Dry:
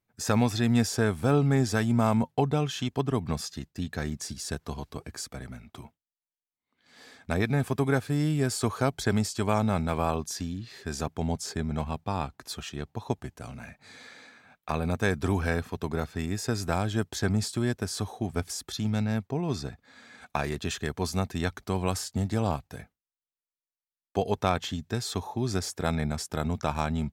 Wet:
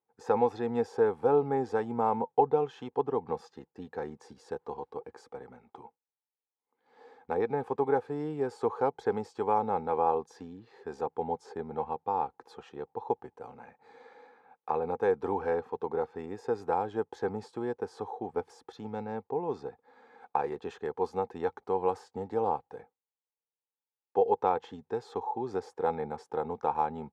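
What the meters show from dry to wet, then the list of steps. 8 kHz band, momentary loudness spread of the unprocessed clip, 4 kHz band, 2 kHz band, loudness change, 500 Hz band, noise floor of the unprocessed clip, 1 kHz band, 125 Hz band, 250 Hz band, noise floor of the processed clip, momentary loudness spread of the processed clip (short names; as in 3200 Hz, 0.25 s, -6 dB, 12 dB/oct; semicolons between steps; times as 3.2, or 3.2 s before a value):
under -25 dB, 13 LU, under -15 dB, -10.5 dB, -2.5 dB, +2.5 dB, under -85 dBFS, +3.0 dB, -17.0 dB, -9.5 dB, under -85 dBFS, 17 LU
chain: double band-pass 630 Hz, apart 0.76 oct; gain +8 dB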